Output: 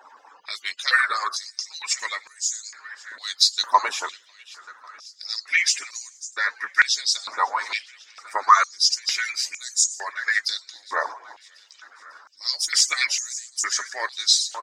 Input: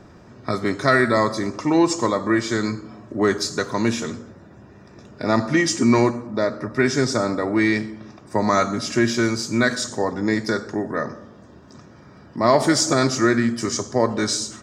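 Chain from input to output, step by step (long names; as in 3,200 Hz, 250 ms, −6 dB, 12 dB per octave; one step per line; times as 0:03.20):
harmonic-percussive split with one part muted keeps percussive
repeating echo 547 ms, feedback 59%, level −20.5 dB
high-pass on a step sequencer 2.2 Hz 950–6,700 Hz
level +2 dB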